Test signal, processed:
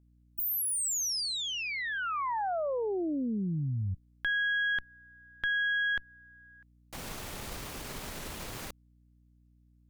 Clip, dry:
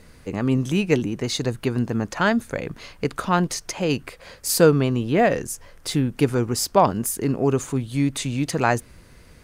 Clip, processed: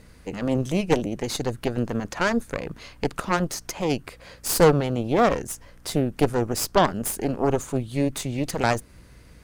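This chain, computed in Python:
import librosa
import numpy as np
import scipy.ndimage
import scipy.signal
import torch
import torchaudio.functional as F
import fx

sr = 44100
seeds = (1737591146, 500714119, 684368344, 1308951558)

y = fx.cheby_harmonics(x, sr, harmonics=(6,), levels_db=(-12,), full_scale_db=-3.0)
y = fx.dynamic_eq(y, sr, hz=2600.0, q=0.75, threshold_db=-34.0, ratio=4.0, max_db=-4)
y = fx.add_hum(y, sr, base_hz=60, snr_db=29)
y = y * librosa.db_to_amplitude(-2.5)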